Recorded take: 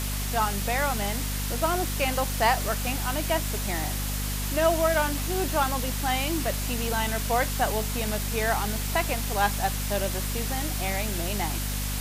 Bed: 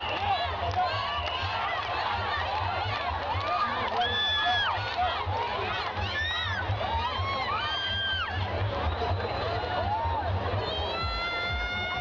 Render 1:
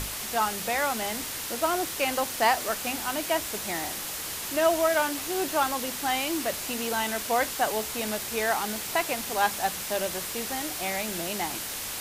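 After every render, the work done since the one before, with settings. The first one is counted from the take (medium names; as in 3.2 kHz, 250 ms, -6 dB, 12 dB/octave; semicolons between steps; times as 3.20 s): hum notches 50/100/150/200/250 Hz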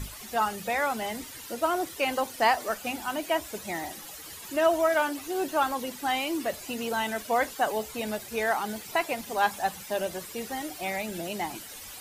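noise reduction 13 dB, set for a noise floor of -35 dBFS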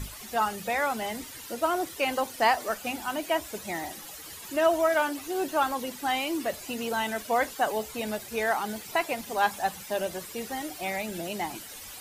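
no audible change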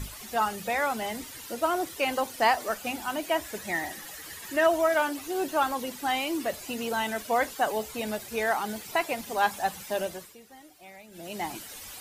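3.39–4.67 s: peaking EQ 1.8 kHz +9.5 dB 0.3 oct; 10.01–11.47 s: dip -16.5 dB, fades 0.37 s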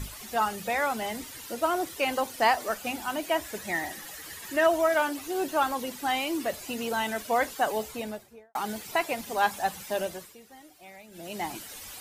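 7.81–8.55 s: studio fade out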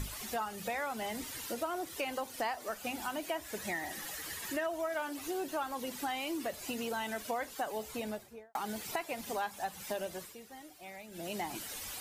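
compression 4:1, threshold -35 dBFS, peak gain reduction 14.5 dB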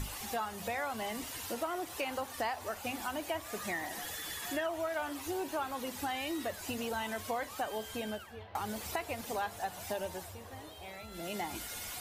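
add bed -21 dB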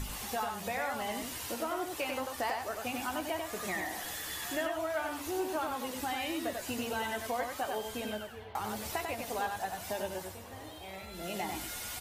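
doubling 16 ms -10.5 dB; delay 94 ms -4.5 dB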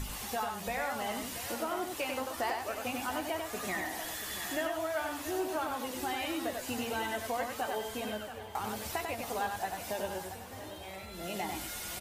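delay 682 ms -11.5 dB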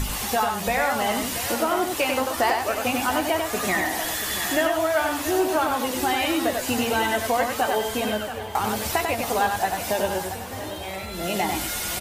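trim +12 dB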